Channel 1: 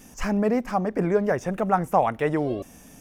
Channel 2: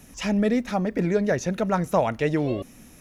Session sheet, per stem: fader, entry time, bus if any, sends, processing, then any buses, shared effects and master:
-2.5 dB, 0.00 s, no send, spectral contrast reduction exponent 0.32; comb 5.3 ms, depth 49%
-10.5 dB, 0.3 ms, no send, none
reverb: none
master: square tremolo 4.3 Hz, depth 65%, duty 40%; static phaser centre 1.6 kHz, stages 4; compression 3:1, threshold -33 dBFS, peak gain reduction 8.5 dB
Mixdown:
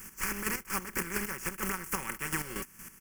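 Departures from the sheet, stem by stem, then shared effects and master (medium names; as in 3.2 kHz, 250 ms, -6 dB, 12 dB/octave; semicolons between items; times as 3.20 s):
stem 1 -2.5 dB -> +3.5 dB; stem 2: polarity flipped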